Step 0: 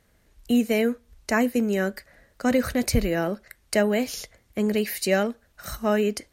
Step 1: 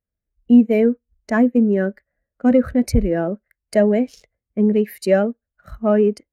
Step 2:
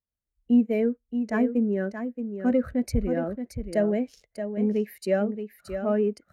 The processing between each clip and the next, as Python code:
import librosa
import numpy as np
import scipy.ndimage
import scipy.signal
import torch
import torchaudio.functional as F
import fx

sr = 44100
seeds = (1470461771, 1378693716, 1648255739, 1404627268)

y1 = fx.wiener(x, sr, points=9)
y1 = fx.leveller(y1, sr, passes=1)
y1 = fx.spectral_expand(y1, sr, expansion=1.5)
y1 = y1 * 10.0 ** (4.5 / 20.0)
y2 = y1 + 10.0 ** (-8.5 / 20.0) * np.pad(y1, (int(625 * sr / 1000.0), 0))[:len(y1)]
y2 = y2 * 10.0 ** (-8.5 / 20.0)